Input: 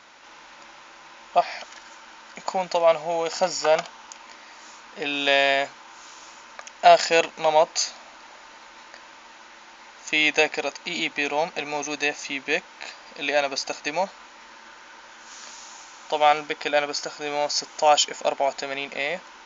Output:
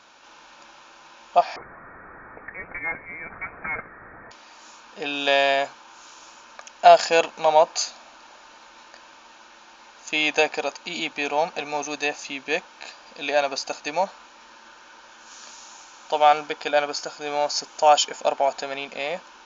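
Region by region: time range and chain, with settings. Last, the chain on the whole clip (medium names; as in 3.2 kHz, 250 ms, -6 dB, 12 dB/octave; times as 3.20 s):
1.56–4.31 s: one-bit delta coder 32 kbps, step -32.5 dBFS + high-pass 850 Hz + frequency inversion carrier 2.8 kHz
whole clip: band-stop 2 kHz, Q 5.7; dynamic bell 890 Hz, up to +4 dB, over -32 dBFS, Q 0.74; trim -1.5 dB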